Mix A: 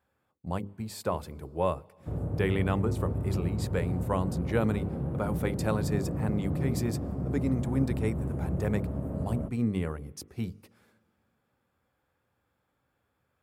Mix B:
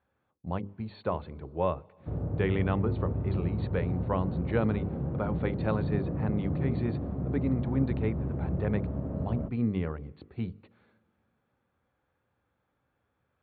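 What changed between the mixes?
speech: add brick-wall FIR low-pass 4.5 kHz; master: add distance through air 170 m

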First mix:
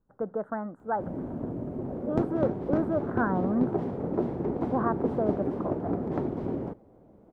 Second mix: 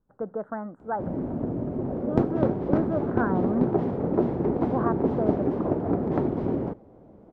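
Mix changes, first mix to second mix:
background +5.0 dB; master: add distance through air 62 m

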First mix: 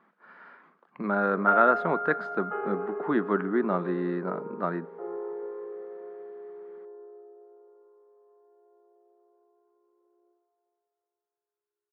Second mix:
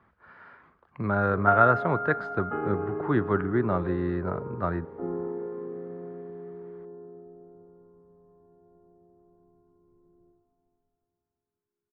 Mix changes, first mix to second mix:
speech: remove brick-wall FIR high-pass 160 Hz; background: remove Chebyshev high-pass 370 Hz, order 6

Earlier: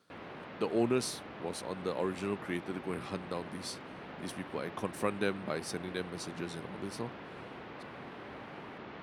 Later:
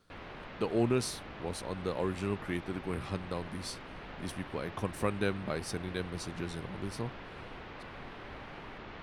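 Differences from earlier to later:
background: add tilt EQ +1.5 dB/octave; master: remove high-pass 170 Hz 12 dB/octave

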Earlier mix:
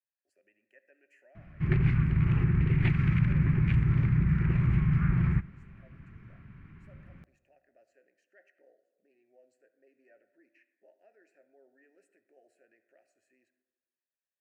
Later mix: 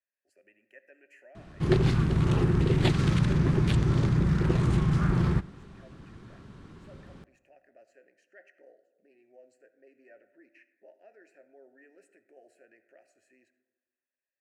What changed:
speech +7.0 dB; background: remove FFT filter 150 Hz 0 dB, 550 Hz -18 dB, 2.3 kHz +3 dB, 3.6 kHz -20 dB, 9 kHz -29 dB

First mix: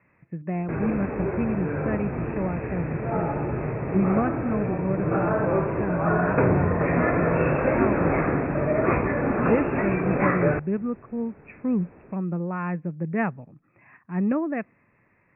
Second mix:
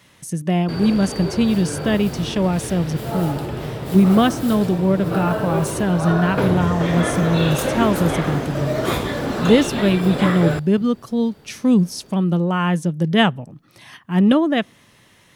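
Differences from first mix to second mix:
speech +9.0 dB; master: remove Chebyshev low-pass 2.6 kHz, order 10

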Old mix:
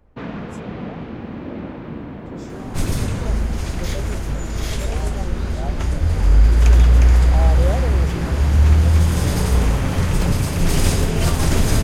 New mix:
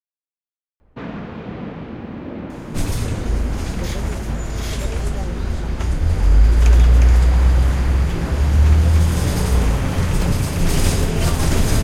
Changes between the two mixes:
speech: muted; first sound: entry +0.80 s

